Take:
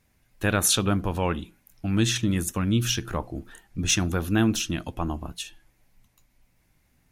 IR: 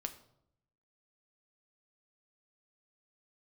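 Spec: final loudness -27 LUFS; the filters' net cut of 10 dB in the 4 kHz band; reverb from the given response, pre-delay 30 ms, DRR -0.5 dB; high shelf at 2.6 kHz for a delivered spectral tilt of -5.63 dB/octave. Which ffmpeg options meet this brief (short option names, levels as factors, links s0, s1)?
-filter_complex "[0:a]highshelf=f=2600:g=-6,equalizer=f=4000:t=o:g=-8,asplit=2[s0][s1];[1:a]atrim=start_sample=2205,adelay=30[s2];[s1][s2]afir=irnorm=-1:irlink=0,volume=1.26[s3];[s0][s3]amix=inputs=2:normalize=0,volume=0.75"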